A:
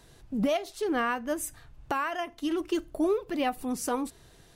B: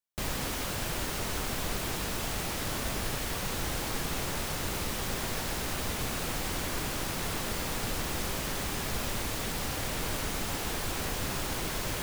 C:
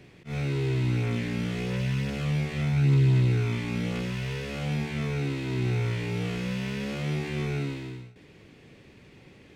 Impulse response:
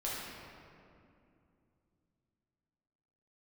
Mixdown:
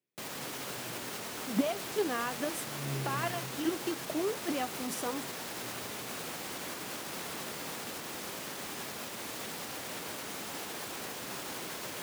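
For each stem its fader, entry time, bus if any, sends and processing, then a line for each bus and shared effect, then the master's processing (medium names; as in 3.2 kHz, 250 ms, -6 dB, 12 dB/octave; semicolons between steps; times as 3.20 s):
+1.5 dB, 1.15 s, no send, square tremolo 2.4 Hz, depth 60%, duty 10%
-4.0 dB, 0.00 s, no send, peak limiter -24.5 dBFS, peak gain reduction 5 dB
-11.0 dB, 0.00 s, send -11.5 dB, upward expansion 2.5:1, over -38 dBFS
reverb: on, RT60 2.6 s, pre-delay 6 ms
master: high-pass 210 Hz 12 dB/octave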